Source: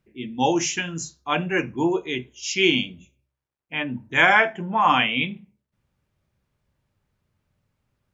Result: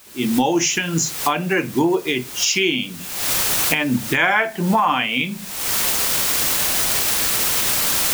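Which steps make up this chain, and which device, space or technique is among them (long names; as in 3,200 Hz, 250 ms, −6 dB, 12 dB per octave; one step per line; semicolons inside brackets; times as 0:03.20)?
high-pass filter 120 Hz
cheap recorder with automatic gain (white noise bed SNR 22 dB; camcorder AGC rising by 54 dB per second)
level −1 dB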